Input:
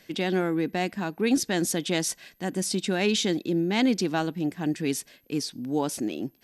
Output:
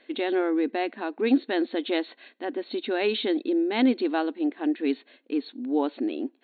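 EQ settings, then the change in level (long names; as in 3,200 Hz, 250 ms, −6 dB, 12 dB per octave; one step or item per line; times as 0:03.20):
linear-phase brick-wall band-pass 230–4,400 Hz
spectral tilt −1.5 dB per octave
0.0 dB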